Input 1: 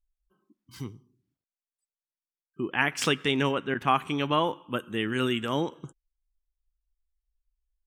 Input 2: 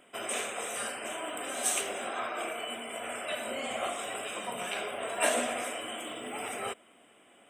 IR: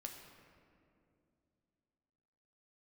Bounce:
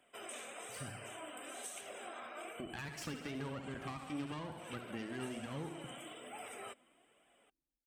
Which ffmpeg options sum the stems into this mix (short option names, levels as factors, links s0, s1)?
-filter_complex "[0:a]bandreject=f=3500:w=5.8,aeval=exprs='(tanh(20*val(0)+0.8)-tanh(0.8))/20':c=same,volume=1.26,asplit=3[s0][s1][s2];[s1]volume=0.1[s3];[s2]volume=0.398[s4];[1:a]volume=0.473[s5];[2:a]atrim=start_sample=2205[s6];[s3][s6]afir=irnorm=-1:irlink=0[s7];[s4]aecho=0:1:67|134|201|268|335|402|469|536:1|0.56|0.314|0.176|0.0983|0.0551|0.0308|0.0173[s8];[s0][s5][s7][s8]amix=inputs=4:normalize=0,acrossover=split=210[s9][s10];[s10]acompressor=threshold=0.0112:ratio=10[s11];[s9][s11]amix=inputs=2:normalize=0,highpass=77,flanger=delay=1.1:depth=2.9:regen=49:speed=1.1:shape=triangular"